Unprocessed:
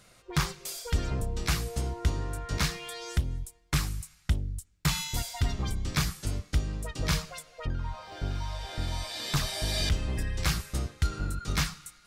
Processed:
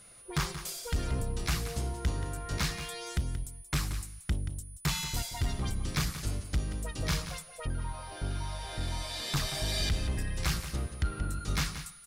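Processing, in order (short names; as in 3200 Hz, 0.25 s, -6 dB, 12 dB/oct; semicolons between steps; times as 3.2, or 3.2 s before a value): 10.64–11.3 treble ducked by the level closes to 2700 Hz, closed at -25 dBFS; whine 9900 Hz -52 dBFS; in parallel at -9.5 dB: sine folder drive 6 dB, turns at -15.5 dBFS; on the sum: echo 0.179 s -11 dB; gain -7.5 dB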